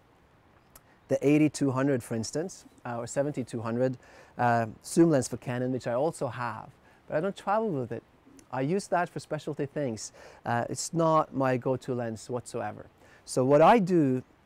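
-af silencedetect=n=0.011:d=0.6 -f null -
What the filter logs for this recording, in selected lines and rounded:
silence_start: 0.00
silence_end: 0.76 | silence_duration: 0.76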